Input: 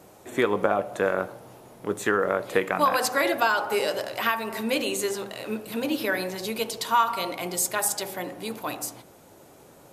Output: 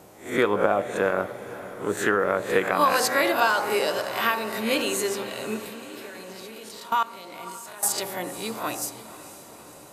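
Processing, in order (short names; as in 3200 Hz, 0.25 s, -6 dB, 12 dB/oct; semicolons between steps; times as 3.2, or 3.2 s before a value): spectral swells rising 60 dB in 0.38 s; 5.68–7.83 level quantiser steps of 21 dB; diffused feedback echo 0.511 s, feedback 61%, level -15 dB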